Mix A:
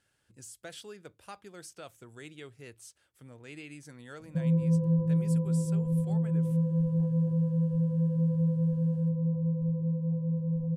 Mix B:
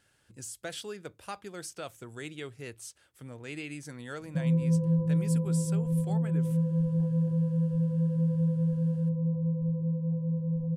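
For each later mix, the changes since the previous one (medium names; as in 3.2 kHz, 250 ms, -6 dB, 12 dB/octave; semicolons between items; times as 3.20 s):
speech +6.0 dB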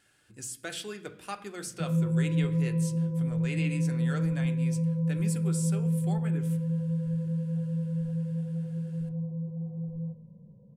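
background: entry -2.55 s; reverb: on, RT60 0.70 s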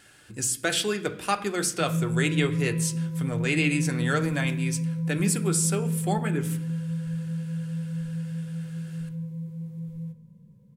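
speech +12.0 dB; background: remove resonant low-pass 680 Hz, resonance Q 4.9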